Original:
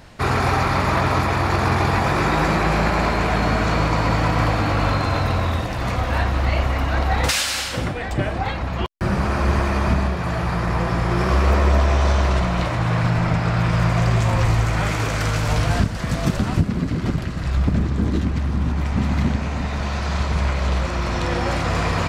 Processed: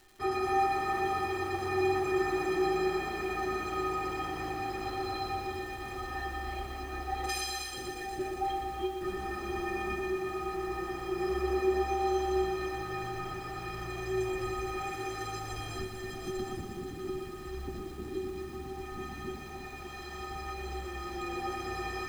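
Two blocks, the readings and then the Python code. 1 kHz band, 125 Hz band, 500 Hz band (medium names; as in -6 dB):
-10.5 dB, -25.0 dB, -7.5 dB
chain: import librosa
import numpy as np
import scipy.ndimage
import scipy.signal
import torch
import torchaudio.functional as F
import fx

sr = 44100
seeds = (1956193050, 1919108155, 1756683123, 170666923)

y = fx.peak_eq(x, sr, hz=290.0, db=7.5, octaves=1.2)
y = fx.stiff_resonator(y, sr, f0_hz=370.0, decay_s=0.3, stiffness=0.03)
y = fx.dmg_crackle(y, sr, seeds[0], per_s=500.0, level_db=-50.0)
y = fx.echo_crushed(y, sr, ms=120, feedback_pct=80, bits=9, wet_db=-7.5)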